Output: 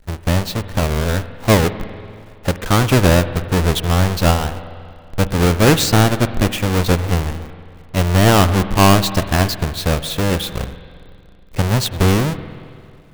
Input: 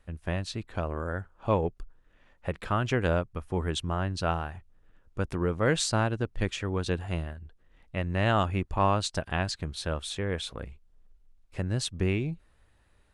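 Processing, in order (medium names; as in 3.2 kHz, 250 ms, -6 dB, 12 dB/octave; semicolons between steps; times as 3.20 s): square wave that keeps the level; spring tank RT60 2.3 s, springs 46/56 ms, chirp 55 ms, DRR 12 dB; trim +8 dB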